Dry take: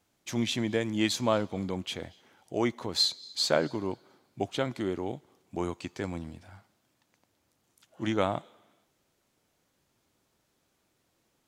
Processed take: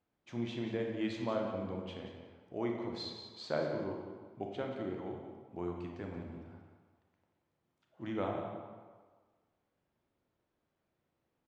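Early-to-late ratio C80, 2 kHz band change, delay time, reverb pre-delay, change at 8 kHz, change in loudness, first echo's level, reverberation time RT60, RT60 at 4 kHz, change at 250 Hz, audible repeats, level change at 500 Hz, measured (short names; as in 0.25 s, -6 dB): 4.0 dB, -10.5 dB, 0.181 s, 27 ms, under -20 dB, -9.0 dB, -10.5 dB, 1.5 s, 0.95 s, -7.0 dB, 1, -6.5 dB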